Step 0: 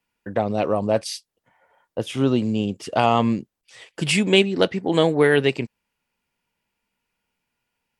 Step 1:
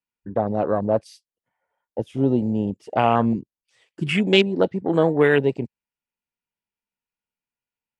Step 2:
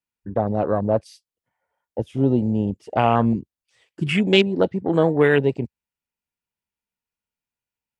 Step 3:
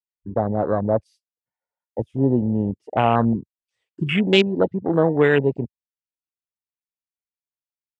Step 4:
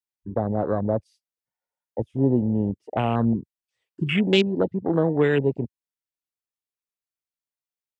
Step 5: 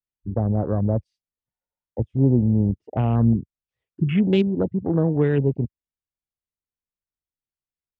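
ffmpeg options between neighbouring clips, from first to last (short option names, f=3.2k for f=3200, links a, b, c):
-af "afwtdn=0.0631"
-af "equalizer=f=70:t=o:w=1.6:g=6.5"
-af "afwtdn=0.0398"
-filter_complex "[0:a]acrossover=split=430|3000[a][b][c];[b]acompressor=threshold=-23dB:ratio=6[d];[a][d][c]amix=inputs=3:normalize=0,volume=-1.5dB"
-af "aemphasis=mode=reproduction:type=riaa,volume=-5dB"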